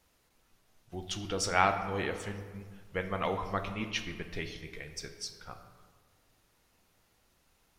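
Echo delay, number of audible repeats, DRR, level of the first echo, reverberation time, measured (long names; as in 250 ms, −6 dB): no echo audible, no echo audible, 6.0 dB, no echo audible, 1.6 s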